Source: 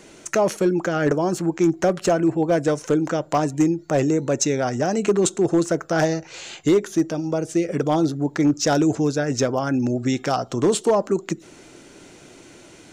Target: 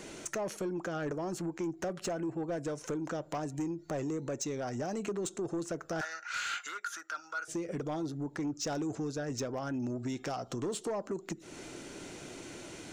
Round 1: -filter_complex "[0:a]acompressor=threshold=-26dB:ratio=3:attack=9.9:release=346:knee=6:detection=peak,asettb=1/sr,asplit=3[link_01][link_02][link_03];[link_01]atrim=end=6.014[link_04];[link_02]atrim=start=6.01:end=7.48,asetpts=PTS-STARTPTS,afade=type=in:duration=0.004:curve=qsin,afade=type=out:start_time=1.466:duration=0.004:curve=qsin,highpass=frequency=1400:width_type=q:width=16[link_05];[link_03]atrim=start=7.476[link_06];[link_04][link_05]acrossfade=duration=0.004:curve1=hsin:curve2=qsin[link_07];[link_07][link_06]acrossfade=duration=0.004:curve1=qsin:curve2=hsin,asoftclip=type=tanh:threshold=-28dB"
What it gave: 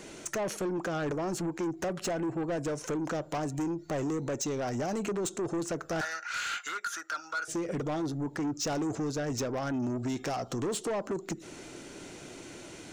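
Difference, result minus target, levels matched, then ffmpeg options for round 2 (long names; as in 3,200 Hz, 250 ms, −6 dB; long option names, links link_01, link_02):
downward compressor: peak gain reduction −6.5 dB
-filter_complex "[0:a]acompressor=threshold=-35.5dB:ratio=3:attack=9.9:release=346:knee=6:detection=peak,asettb=1/sr,asplit=3[link_01][link_02][link_03];[link_01]atrim=end=6.014[link_04];[link_02]atrim=start=6.01:end=7.48,asetpts=PTS-STARTPTS,afade=type=in:duration=0.004:curve=qsin,afade=type=out:start_time=1.466:duration=0.004:curve=qsin,highpass=frequency=1400:width_type=q:width=16[link_05];[link_03]atrim=start=7.476[link_06];[link_04][link_05]acrossfade=duration=0.004:curve1=hsin:curve2=qsin[link_07];[link_07][link_06]acrossfade=duration=0.004:curve1=qsin:curve2=hsin,asoftclip=type=tanh:threshold=-28dB"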